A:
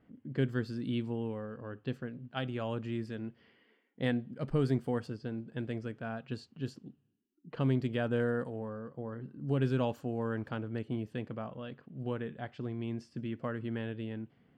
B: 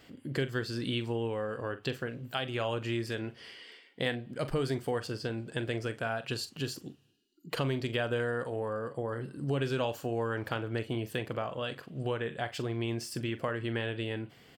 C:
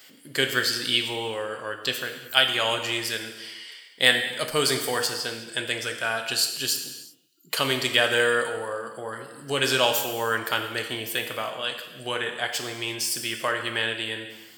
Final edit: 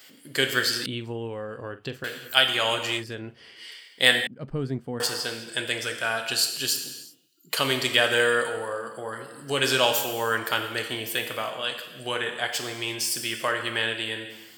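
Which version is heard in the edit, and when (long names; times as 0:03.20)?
C
0:00.86–0:02.04: punch in from B
0:03.00–0:03.60: punch in from B, crossfade 0.10 s
0:04.27–0:05.00: punch in from A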